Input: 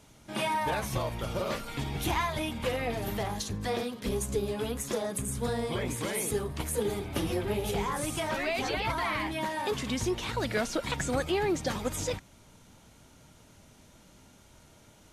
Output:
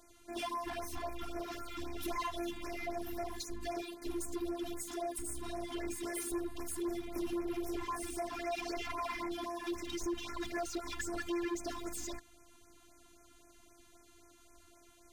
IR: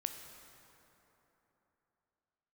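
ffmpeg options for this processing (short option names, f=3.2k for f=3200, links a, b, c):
-af "afftfilt=real='hypot(re,im)*cos(PI*b)':imag='0':win_size=512:overlap=0.75,bandreject=f=5.4k:w=9.2,volume=32.5dB,asoftclip=hard,volume=-32.5dB,afftfilt=real='re*(1-between(b*sr/1024,460*pow(3800/460,0.5+0.5*sin(2*PI*3.8*pts/sr))/1.41,460*pow(3800/460,0.5+0.5*sin(2*PI*3.8*pts/sr))*1.41))':imag='im*(1-between(b*sr/1024,460*pow(3800/460,0.5+0.5*sin(2*PI*3.8*pts/sr))/1.41,460*pow(3800/460,0.5+0.5*sin(2*PI*3.8*pts/sr))*1.41))':win_size=1024:overlap=0.75"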